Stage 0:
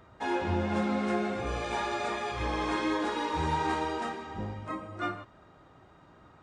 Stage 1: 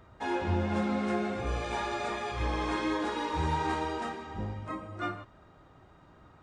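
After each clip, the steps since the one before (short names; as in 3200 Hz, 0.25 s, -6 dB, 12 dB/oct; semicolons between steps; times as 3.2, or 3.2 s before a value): low shelf 78 Hz +8.5 dB; gain -1.5 dB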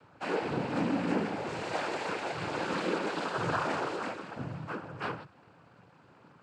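noise vocoder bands 8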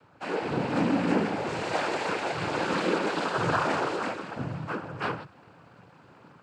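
AGC gain up to 5 dB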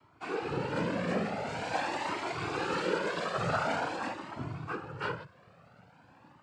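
cascading flanger rising 0.46 Hz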